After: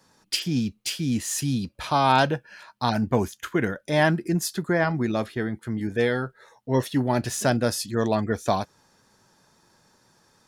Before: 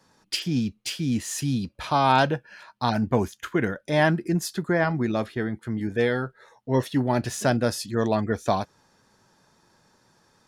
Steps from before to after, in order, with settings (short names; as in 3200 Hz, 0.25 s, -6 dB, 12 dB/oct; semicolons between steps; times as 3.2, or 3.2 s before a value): high shelf 6100 Hz +5.5 dB